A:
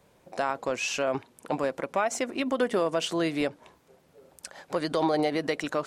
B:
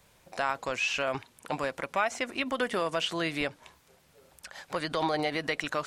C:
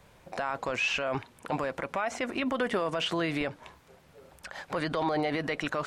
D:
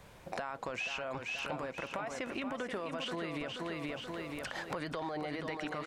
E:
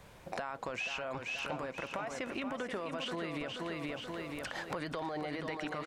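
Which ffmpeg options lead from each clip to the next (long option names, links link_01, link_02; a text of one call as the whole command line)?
ffmpeg -i in.wav -filter_complex "[0:a]equalizer=frequency=350:width=0.38:gain=-12.5,acrossover=split=3500[link_01][link_02];[link_02]acompressor=threshold=-49dB:ratio=4:attack=1:release=60[link_03];[link_01][link_03]amix=inputs=2:normalize=0,volume=6dB" out.wav
ffmpeg -i in.wav -af "highshelf=frequency=3200:gain=-11,alimiter=level_in=2.5dB:limit=-24dB:level=0:latency=1:release=15,volume=-2.5dB,volume=6.5dB" out.wav
ffmpeg -i in.wav -filter_complex "[0:a]asplit=2[link_01][link_02];[link_02]aecho=0:1:480|960|1440|1920|2400:0.501|0.205|0.0842|0.0345|0.0142[link_03];[link_01][link_03]amix=inputs=2:normalize=0,acompressor=threshold=-37dB:ratio=10,volume=2dB" out.wav
ffmpeg -i in.wav -af "aecho=1:1:604:0.0841" out.wav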